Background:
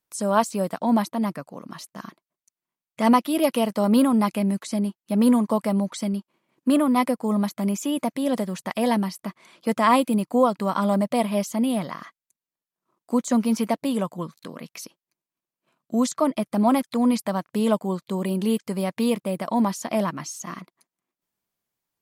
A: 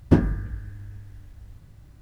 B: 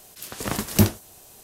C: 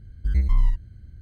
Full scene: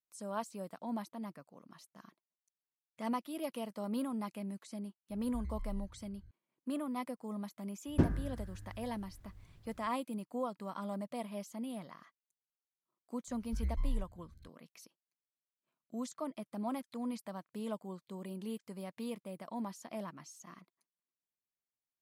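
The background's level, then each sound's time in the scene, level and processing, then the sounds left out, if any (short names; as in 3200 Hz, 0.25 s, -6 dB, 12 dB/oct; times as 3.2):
background -18.5 dB
5.1 add C -14 dB + compressor 3:1, threshold -26 dBFS
7.87 add A -11 dB
13.28 add C -15 dB
not used: B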